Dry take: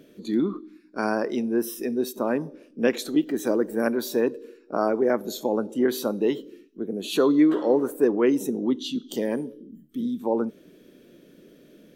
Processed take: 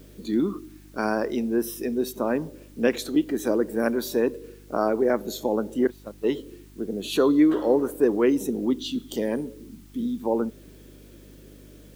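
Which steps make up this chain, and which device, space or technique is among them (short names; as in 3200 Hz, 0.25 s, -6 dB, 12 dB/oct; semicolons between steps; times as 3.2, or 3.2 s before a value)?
5.87–6.29 gate -21 dBFS, range -25 dB; video cassette with head-switching buzz (buzz 50 Hz, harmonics 7, -50 dBFS -5 dB/oct; white noise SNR 34 dB)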